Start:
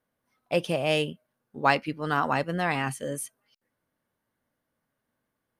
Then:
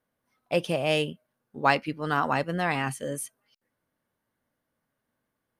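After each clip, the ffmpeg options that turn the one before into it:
-af anull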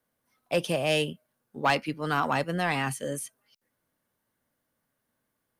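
-filter_complex "[0:a]highshelf=f=4.9k:g=7,acrossover=split=140|1200|5900[a][b][c][d];[d]alimiter=level_in=4dB:limit=-24dB:level=0:latency=1:release=157,volume=-4dB[e];[a][b][c][e]amix=inputs=4:normalize=0,asoftclip=type=tanh:threshold=-14dB"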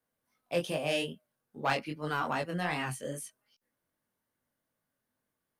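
-af "flanger=delay=19:depth=4.3:speed=2.5,volume=-2.5dB"

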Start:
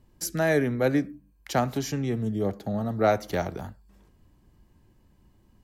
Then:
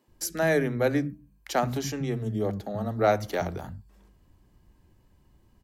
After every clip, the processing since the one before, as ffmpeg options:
-filter_complex "[0:a]acrossover=split=220[a][b];[a]adelay=80[c];[c][b]amix=inputs=2:normalize=0"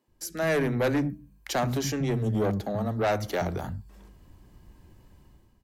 -af "dynaudnorm=f=130:g=7:m=13dB,asoftclip=type=tanh:threshold=-14.5dB,volume=-6dB"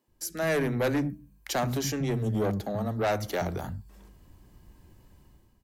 -af "highshelf=f=7k:g=5,volume=-1.5dB"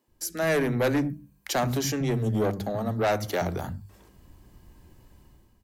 -af "bandreject=f=50:t=h:w=6,bandreject=f=100:t=h:w=6,bandreject=f=150:t=h:w=6,bandreject=f=200:t=h:w=6,volume=2.5dB"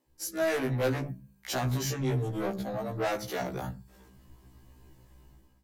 -af "asoftclip=type=tanh:threshold=-23dB,afftfilt=real='re*1.73*eq(mod(b,3),0)':imag='im*1.73*eq(mod(b,3),0)':win_size=2048:overlap=0.75"

